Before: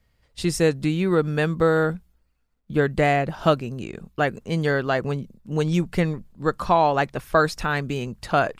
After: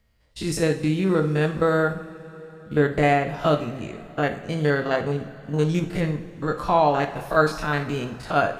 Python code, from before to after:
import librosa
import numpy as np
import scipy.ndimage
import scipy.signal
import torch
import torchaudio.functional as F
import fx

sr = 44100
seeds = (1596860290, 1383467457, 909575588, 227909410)

y = fx.spec_steps(x, sr, hold_ms=50)
y = fx.rev_double_slope(y, sr, seeds[0], early_s=0.54, late_s=4.5, knee_db=-18, drr_db=6.0)